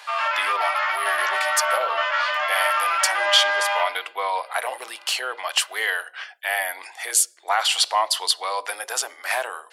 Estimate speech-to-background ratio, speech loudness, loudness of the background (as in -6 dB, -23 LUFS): -2.0 dB, -24.0 LUFS, -22.0 LUFS